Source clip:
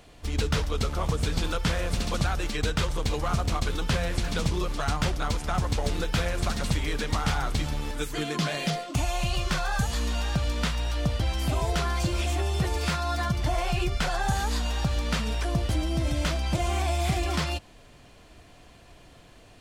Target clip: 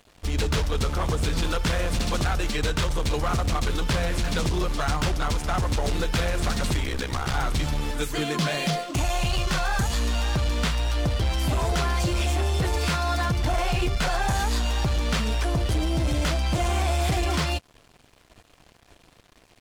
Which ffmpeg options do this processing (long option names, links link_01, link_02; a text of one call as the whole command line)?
ffmpeg -i in.wav -filter_complex "[0:a]aeval=exprs='0.251*(cos(1*acos(clip(val(0)/0.251,-1,1)))-cos(1*PI/2))+0.112*(cos(5*acos(clip(val(0)/0.251,-1,1)))-cos(5*PI/2))':channel_layout=same,aeval=exprs='sgn(val(0))*max(abs(val(0))-0.01,0)':channel_layout=same,asettb=1/sr,asplit=3[link_01][link_02][link_03];[link_01]atrim=end=6.834[link_04];[link_02]atrim=start=6.83:end=7.34,asetpts=PTS-STARTPTS,afade=type=in:duration=0.004:curve=qsin,afade=type=out:start_time=0.506:duration=0.004:curve=qsin,aeval=exprs='val(0)*sin(2*PI*32*n/s)':channel_layout=same[link_05];[link_03]atrim=start=7.336[link_06];[link_04][link_05]acrossfade=duration=0.004:curve1=hsin:curve2=qsin[link_07];[link_07][link_06]acrossfade=duration=0.004:curve1=qsin:curve2=hsin,volume=-4.5dB" out.wav